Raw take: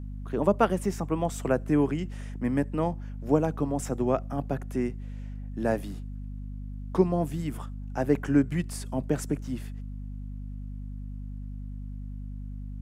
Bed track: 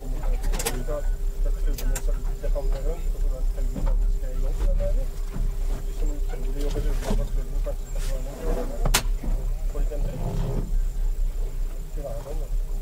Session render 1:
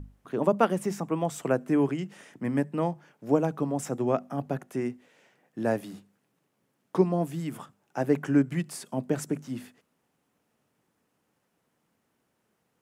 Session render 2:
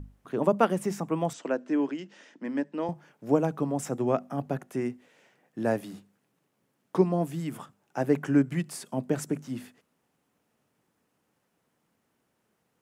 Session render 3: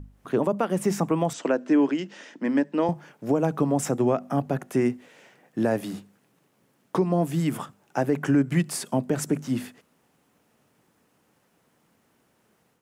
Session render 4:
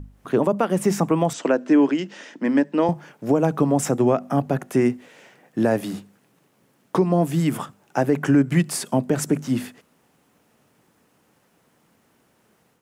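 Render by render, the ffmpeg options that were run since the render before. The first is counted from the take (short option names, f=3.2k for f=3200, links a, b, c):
-af "bandreject=f=50:t=h:w=6,bandreject=f=100:t=h:w=6,bandreject=f=150:t=h:w=6,bandreject=f=200:t=h:w=6,bandreject=f=250:t=h:w=6"
-filter_complex "[0:a]asettb=1/sr,asplit=3[a][b][c];[a]atrim=end=1.334[d];[b]atrim=start=1.33:end=2.89,asetpts=PTS-STARTPTS,afade=t=in:d=0.004:c=qsin,afade=t=out:st=1.556:d=0.004:c=qsin,highpass=f=250:w=0.5412,highpass=f=250:w=1.3066,equalizer=f=410:t=q:w=4:g=-6,equalizer=f=740:t=q:w=4:g=-6,equalizer=f=1.2k:t=q:w=4:g=-6,equalizer=f=2.2k:t=q:w=4:g=-4,lowpass=f=6.3k:w=0.5412,lowpass=f=6.3k:w=1.3066[e];[c]atrim=start=2.886[f];[d][e]acrossfade=d=0.004:c1=hsin:c2=qsin[g];[g][f]acrossfade=d=0.004:c1=qsin:c2=hsin"
-af "dynaudnorm=f=120:g=3:m=8.5dB,alimiter=limit=-12.5dB:level=0:latency=1:release=162"
-af "volume=4dB"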